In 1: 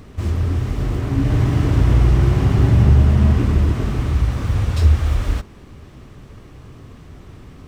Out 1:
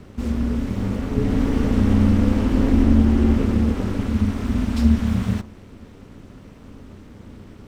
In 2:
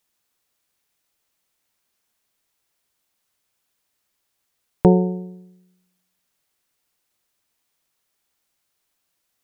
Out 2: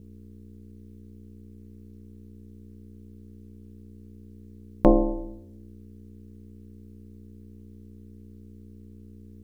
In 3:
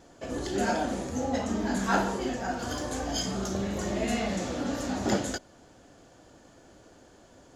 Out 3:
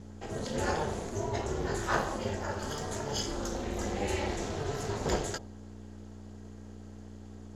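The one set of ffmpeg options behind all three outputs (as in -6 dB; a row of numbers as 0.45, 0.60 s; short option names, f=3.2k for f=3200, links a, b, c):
-af "aeval=exprs='val(0)+0.00708*(sin(2*PI*60*n/s)+sin(2*PI*2*60*n/s)/2+sin(2*PI*3*60*n/s)/3+sin(2*PI*4*60*n/s)/4+sin(2*PI*5*60*n/s)/5)':c=same,bandreject=f=66.04:t=h:w=4,bandreject=f=132.08:t=h:w=4,bandreject=f=198.12:t=h:w=4,bandreject=f=264.16:t=h:w=4,bandreject=f=330.2:t=h:w=4,bandreject=f=396.24:t=h:w=4,bandreject=f=462.28:t=h:w=4,bandreject=f=528.32:t=h:w=4,bandreject=f=594.36:t=h:w=4,bandreject=f=660.4:t=h:w=4,bandreject=f=726.44:t=h:w=4,bandreject=f=792.48:t=h:w=4,bandreject=f=858.52:t=h:w=4,bandreject=f=924.56:t=h:w=4,bandreject=f=990.6:t=h:w=4,bandreject=f=1.05664k:t=h:w=4,bandreject=f=1.12268k:t=h:w=4,aeval=exprs='val(0)*sin(2*PI*150*n/s)':c=same"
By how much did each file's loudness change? -3.0, -5.5, -3.5 LU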